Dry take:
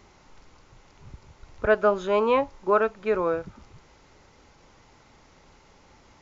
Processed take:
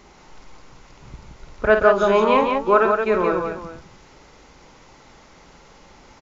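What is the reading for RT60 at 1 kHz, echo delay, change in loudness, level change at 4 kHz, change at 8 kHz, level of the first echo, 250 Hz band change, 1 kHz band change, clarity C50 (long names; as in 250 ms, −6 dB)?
no reverb audible, 51 ms, +6.0 dB, +7.5 dB, can't be measured, −7.5 dB, +7.0 dB, +7.5 dB, no reverb audible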